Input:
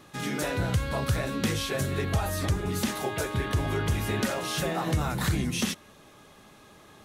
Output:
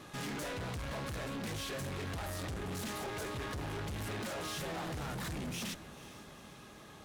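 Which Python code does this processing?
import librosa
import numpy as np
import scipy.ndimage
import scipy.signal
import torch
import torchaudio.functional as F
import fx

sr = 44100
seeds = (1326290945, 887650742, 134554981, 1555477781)

y = fx.rider(x, sr, range_db=10, speed_s=0.5)
y = fx.tube_stage(y, sr, drive_db=38.0, bias=0.45)
y = fx.echo_diffused(y, sr, ms=461, feedback_pct=60, wet_db=-15)
y = fx.doppler_dist(y, sr, depth_ms=0.16)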